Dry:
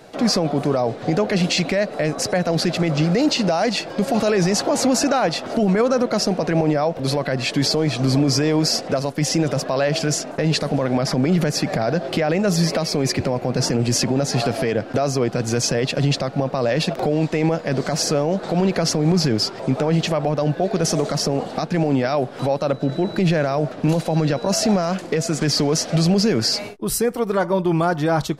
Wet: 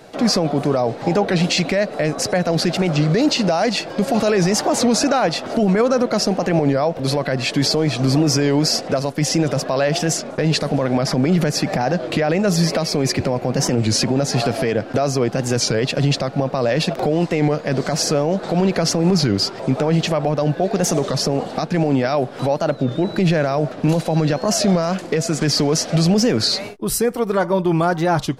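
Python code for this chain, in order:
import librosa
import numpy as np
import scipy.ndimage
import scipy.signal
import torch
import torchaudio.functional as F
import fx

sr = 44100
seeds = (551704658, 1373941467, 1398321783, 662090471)

y = fx.peak_eq(x, sr, hz=850.0, db=8.0, octaves=0.23, at=(0.99, 1.45))
y = fx.record_warp(y, sr, rpm=33.33, depth_cents=160.0)
y = y * librosa.db_to_amplitude(1.5)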